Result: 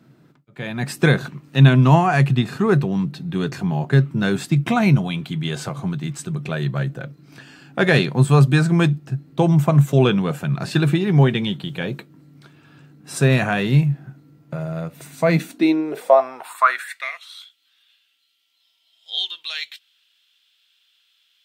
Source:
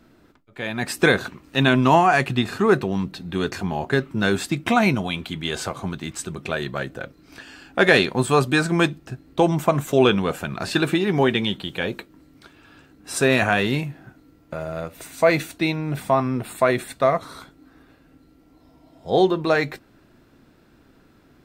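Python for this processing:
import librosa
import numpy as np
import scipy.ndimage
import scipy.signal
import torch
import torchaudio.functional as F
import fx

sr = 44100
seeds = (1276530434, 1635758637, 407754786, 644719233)

y = fx.filter_sweep_highpass(x, sr, from_hz=140.0, to_hz=3200.0, start_s=15.22, end_s=17.29, q=6.6)
y = y * librosa.db_to_amplitude(-2.5)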